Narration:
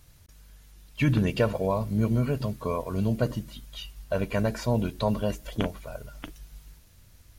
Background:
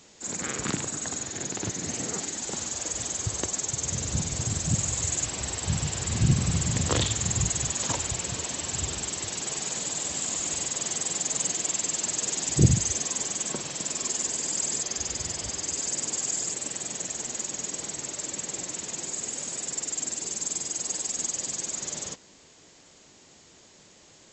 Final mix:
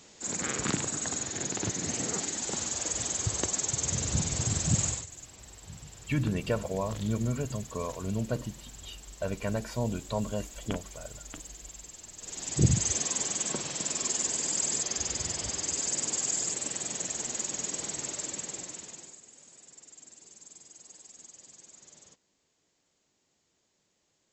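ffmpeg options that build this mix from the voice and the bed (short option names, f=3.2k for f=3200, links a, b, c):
-filter_complex "[0:a]adelay=5100,volume=-5.5dB[a];[1:a]volume=17dB,afade=t=out:st=4.86:d=0.2:silence=0.125893,afade=t=in:st=12.17:d=0.74:silence=0.133352,afade=t=out:st=18.08:d=1.13:silence=0.105925[b];[a][b]amix=inputs=2:normalize=0"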